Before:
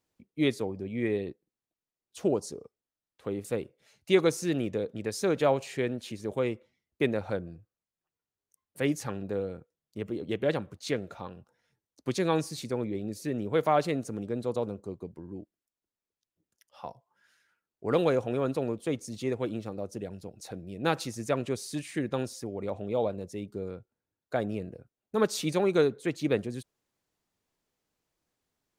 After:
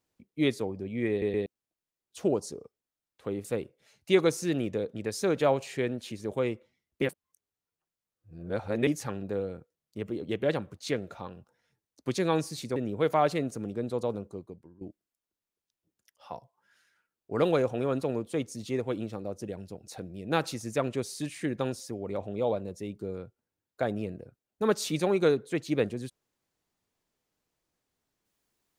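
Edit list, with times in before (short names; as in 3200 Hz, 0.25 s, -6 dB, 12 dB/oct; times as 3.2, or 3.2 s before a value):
1.1 stutter in place 0.12 s, 3 plays
7.02–8.87 reverse
12.76–13.29 cut
14.76–15.34 fade out, to -17 dB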